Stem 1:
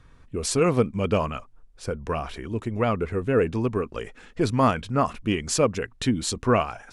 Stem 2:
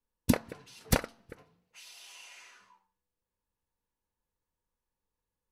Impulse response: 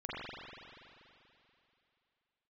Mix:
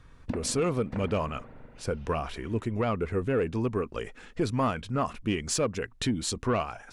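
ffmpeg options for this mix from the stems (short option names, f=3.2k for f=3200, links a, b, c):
-filter_complex "[0:a]volume=-0.5dB,asplit=2[a][b];[1:a]lowpass=1.9k,volume=-4dB,asplit=2[c][d];[d]volume=-9.5dB[e];[b]apad=whole_len=243201[f];[c][f]sidechaincompress=threshold=-27dB:ratio=4:attack=7.4:release=435[g];[2:a]atrim=start_sample=2205[h];[e][h]afir=irnorm=-1:irlink=0[i];[a][g][i]amix=inputs=3:normalize=0,asoftclip=type=tanh:threshold=-12.5dB,alimiter=limit=-19dB:level=0:latency=1:release=461"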